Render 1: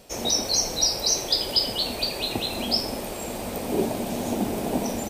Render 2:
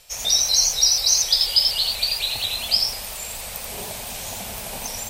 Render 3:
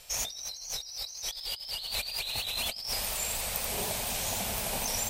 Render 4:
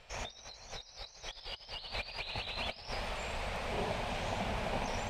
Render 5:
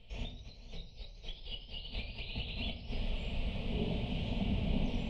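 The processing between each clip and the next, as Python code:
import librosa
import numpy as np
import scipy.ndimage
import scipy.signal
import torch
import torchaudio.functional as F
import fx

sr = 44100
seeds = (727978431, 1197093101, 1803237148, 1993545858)

y1 = fx.tone_stack(x, sr, knobs='10-0-10')
y1 = y1 + 10.0 ** (-3.5 / 20.0) * np.pad(y1, (int(86 * sr / 1000.0), 0))[:len(y1)]
y1 = fx.vibrato_shape(y1, sr, shape='saw_up', rate_hz=4.1, depth_cents=100.0)
y1 = F.gain(torch.from_numpy(y1), 5.5).numpy()
y2 = fx.over_compress(y1, sr, threshold_db=-30.0, ratio=-1.0)
y2 = F.gain(torch.from_numpy(y2), -6.0).numpy()
y3 = scipy.signal.sosfilt(scipy.signal.butter(2, 2300.0, 'lowpass', fs=sr, output='sos'), y2)
y3 = y3 + 10.0 ** (-16.5 / 20.0) * np.pad(y3, (int(439 * sr / 1000.0), 0))[:len(y3)]
y3 = F.gain(torch.from_numpy(y3), 1.0).numpy()
y4 = fx.spec_box(y3, sr, start_s=0.78, length_s=0.22, low_hz=970.0, high_hz=2000.0, gain_db=-9)
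y4 = fx.curve_eq(y4, sr, hz=(250.0, 1600.0, 3000.0, 6000.0), db=(0, -28, -3, -23))
y4 = fx.room_shoebox(y4, sr, seeds[0], volume_m3=630.0, walls='furnished', distance_m=1.6)
y4 = F.gain(torch.from_numpy(y4), 3.5).numpy()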